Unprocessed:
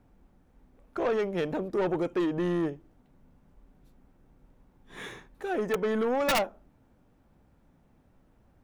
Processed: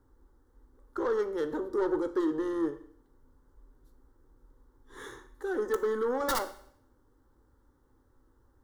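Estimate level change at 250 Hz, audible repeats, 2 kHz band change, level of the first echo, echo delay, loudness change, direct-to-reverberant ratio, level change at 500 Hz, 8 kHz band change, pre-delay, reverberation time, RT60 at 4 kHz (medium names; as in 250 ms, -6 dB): -2.0 dB, no echo, -5.0 dB, no echo, no echo, -2.0 dB, 10.0 dB, -1.5 dB, -1.0 dB, 12 ms, 0.65 s, 0.65 s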